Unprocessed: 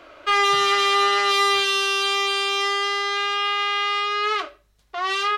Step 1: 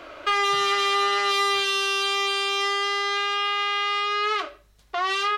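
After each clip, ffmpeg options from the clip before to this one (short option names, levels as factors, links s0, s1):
-af "acompressor=threshold=0.0316:ratio=2,volume=1.68"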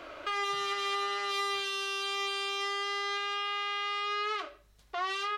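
-af "alimiter=limit=0.106:level=0:latency=1:release=360,volume=0.631"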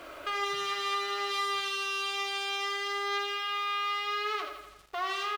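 -af "aecho=1:1:82|164|246|328|410|492|574:0.355|0.209|0.124|0.0729|0.043|0.0254|0.015,acrusher=bits=8:mix=0:aa=0.5"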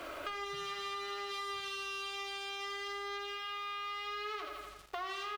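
-filter_complex "[0:a]acrossover=split=250[s0][s1];[s1]acompressor=threshold=0.01:ratio=5[s2];[s0][s2]amix=inputs=2:normalize=0,volume=1.19"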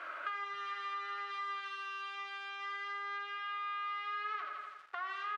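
-af "bandpass=f=1500:t=q:w=2.6:csg=0,volume=2"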